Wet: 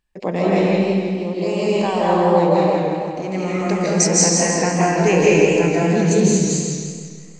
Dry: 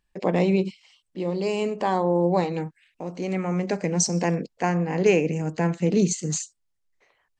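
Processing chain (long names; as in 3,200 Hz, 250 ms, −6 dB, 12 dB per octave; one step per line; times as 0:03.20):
0:03.33–0:05.74: high-shelf EQ 5,300 Hz +9.5 dB
comb and all-pass reverb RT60 1.4 s, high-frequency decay 0.85×, pre-delay 120 ms, DRR −5.5 dB
feedback echo with a swinging delay time 165 ms, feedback 52%, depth 100 cents, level −5.5 dB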